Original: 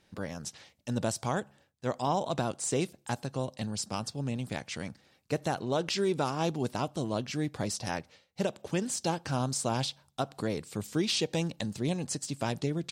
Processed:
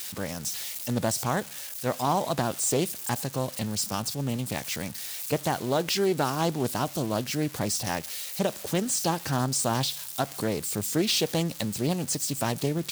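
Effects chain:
spike at every zero crossing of −30.5 dBFS
highs frequency-modulated by the lows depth 0.21 ms
level +4 dB

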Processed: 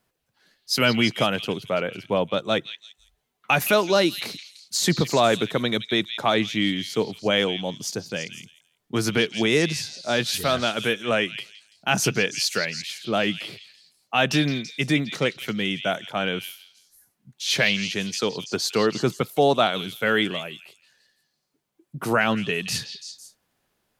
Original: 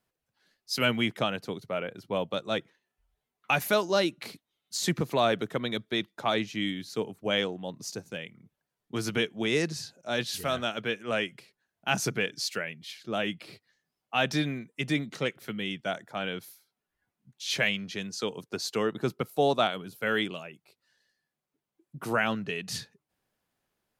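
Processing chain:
0:01.88–0:02.39: high-shelf EQ 6,000 Hz −9.5 dB
in parallel at −1.5 dB: brickwall limiter −20 dBFS, peak gain reduction 8.5 dB
on the sum: echo through a band-pass that steps 167 ms, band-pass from 3,400 Hz, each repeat 0.7 octaves, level −6 dB
level +2.5 dB

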